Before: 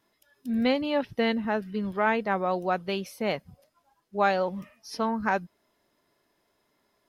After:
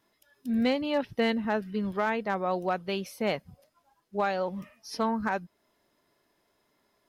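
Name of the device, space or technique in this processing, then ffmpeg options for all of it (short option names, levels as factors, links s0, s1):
limiter into clipper: -af "alimiter=limit=0.15:level=0:latency=1:release=403,asoftclip=type=hard:threshold=0.126"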